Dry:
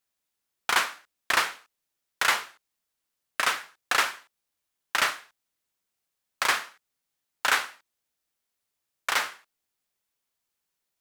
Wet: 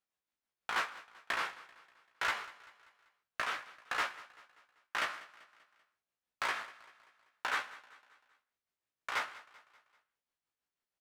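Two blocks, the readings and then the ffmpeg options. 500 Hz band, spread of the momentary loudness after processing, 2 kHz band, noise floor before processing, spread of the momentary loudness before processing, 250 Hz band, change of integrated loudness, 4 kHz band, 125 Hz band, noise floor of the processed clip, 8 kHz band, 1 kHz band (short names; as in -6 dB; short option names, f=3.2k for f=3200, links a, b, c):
-9.0 dB, 18 LU, -10.0 dB, -83 dBFS, 12 LU, -9.5 dB, -11.0 dB, -13.0 dB, n/a, under -85 dBFS, -18.0 dB, -9.0 dB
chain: -filter_complex "[0:a]lowpass=f=1.4k:p=1,tiltshelf=f=970:g=-3,asplit=2[a][b];[b]acompressor=threshold=-33dB:ratio=6,volume=-1dB[c];[a][c]amix=inputs=2:normalize=0,flanger=delay=15.5:depth=2.8:speed=0.53,tremolo=f=6.2:d=0.49,asoftclip=type=hard:threshold=-21dB,asplit=2[d][e];[e]aecho=0:1:194|388|582|776:0.112|0.055|0.0269|0.0132[f];[d][f]amix=inputs=2:normalize=0,volume=-4dB"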